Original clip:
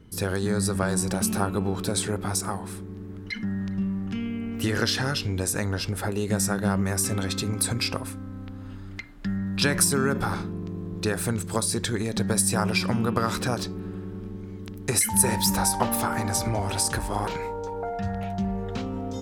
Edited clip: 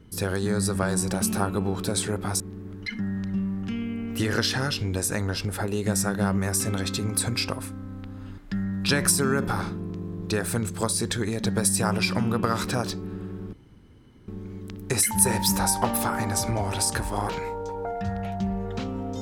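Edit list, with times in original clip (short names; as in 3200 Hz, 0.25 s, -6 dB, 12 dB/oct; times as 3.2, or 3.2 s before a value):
2.4–2.84 cut
8.82–9.11 cut
14.26 insert room tone 0.75 s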